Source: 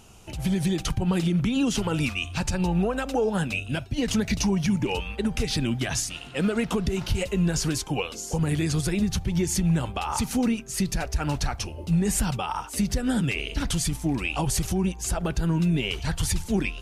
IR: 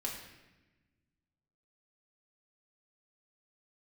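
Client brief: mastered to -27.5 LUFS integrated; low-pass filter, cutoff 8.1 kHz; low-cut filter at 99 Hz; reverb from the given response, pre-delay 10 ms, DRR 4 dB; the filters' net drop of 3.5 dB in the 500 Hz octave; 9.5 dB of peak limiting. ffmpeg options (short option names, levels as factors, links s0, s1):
-filter_complex "[0:a]highpass=99,lowpass=8100,equalizer=f=500:t=o:g=-4.5,alimiter=level_in=1.06:limit=0.0631:level=0:latency=1,volume=0.944,asplit=2[s0][s1];[1:a]atrim=start_sample=2205,adelay=10[s2];[s1][s2]afir=irnorm=-1:irlink=0,volume=0.531[s3];[s0][s3]amix=inputs=2:normalize=0,volume=1.5"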